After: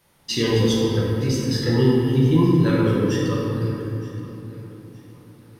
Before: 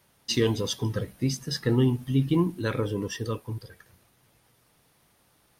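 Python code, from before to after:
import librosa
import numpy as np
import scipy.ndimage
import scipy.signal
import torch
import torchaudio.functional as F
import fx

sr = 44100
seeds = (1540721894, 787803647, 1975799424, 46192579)

y = fx.echo_feedback(x, sr, ms=920, feedback_pct=34, wet_db=-19.0)
y = fx.room_shoebox(y, sr, seeds[0], volume_m3=120.0, walls='hard', distance_m=0.76)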